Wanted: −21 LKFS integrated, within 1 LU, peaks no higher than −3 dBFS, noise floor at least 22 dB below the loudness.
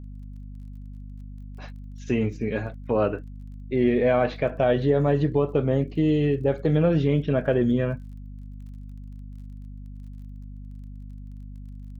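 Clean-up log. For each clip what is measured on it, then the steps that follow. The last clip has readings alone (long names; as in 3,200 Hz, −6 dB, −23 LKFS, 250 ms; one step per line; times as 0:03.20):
crackle rate 26 per second; mains hum 50 Hz; hum harmonics up to 250 Hz; level of the hum −36 dBFS; integrated loudness −23.5 LKFS; sample peak −10.0 dBFS; target loudness −21.0 LKFS
→ click removal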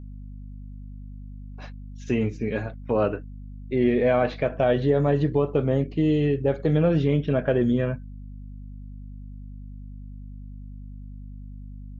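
crackle rate 0 per second; mains hum 50 Hz; hum harmonics up to 250 Hz; level of the hum −36 dBFS
→ mains-hum notches 50/100/150/200/250 Hz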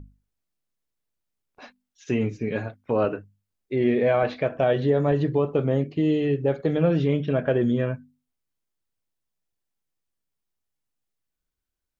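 mains hum none found; integrated loudness −24.0 LKFS; sample peak −10.5 dBFS; target loudness −21.0 LKFS
→ level +3 dB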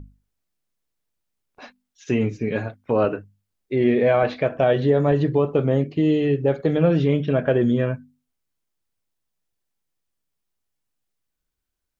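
integrated loudness −21.0 LKFS; sample peak −7.5 dBFS; background noise floor −80 dBFS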